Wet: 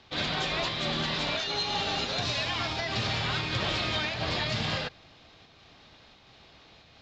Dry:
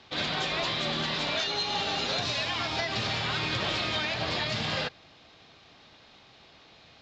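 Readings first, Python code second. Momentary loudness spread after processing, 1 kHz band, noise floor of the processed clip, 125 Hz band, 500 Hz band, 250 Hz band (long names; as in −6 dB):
2 LU, −0.5 dB, −57 dBFS, +2.5 dB, −0.5 dB, +0.5 dB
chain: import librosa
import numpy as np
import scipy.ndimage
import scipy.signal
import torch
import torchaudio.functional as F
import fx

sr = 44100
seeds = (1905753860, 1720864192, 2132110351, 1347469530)

p1 = fx.low_shelf(x, sr, hz=84.0, db=9.5)
p2 = fx.volume_shaper(p1, sr, bpm=88, per_beat=1, depth_db=-7, release_ms=132.0, shape='slow start')
p3 = p1 + F.gain(torch.from_numpy(p2), 0.5).numpy()
y = F.gain(torch.from_numpy(p3), -6.5).numpy()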